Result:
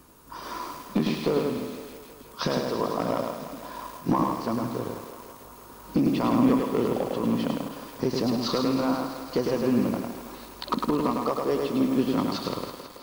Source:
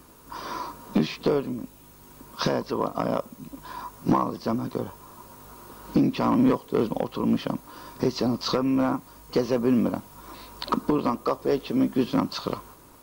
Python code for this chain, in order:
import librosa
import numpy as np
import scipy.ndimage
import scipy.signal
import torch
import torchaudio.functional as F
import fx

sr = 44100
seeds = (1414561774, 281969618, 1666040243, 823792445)

y = fx.echo_thinned(x, sr, ms=164, feedback_pct=74, hz=220.0, wet_db=-10.0)
y = fx.echo_crushed(y, sr, ms=104, feedback_pct=35, bits=7, wet_db=-3.0)
y = y * librosa.db_to_amplitude(-2.5)